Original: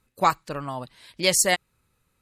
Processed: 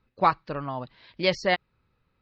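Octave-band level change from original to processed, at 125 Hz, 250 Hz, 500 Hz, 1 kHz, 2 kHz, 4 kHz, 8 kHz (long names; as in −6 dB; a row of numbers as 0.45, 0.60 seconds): 0.0, 0.0, 0.0, −0.5, −2.0, −5.0, −26.5 decibels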